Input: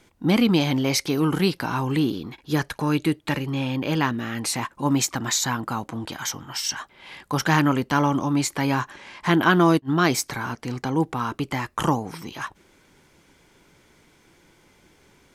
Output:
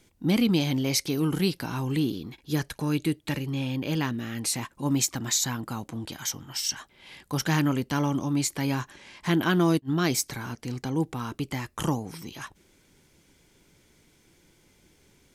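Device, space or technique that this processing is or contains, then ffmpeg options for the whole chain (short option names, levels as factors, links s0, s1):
smiley-face EQ: -af "lowshelf=f=170:g=3.5,equalizer=f=1100:t=o:w=1.6:g=-6,highshelf=f=5100:g=5.5,volume=0.596"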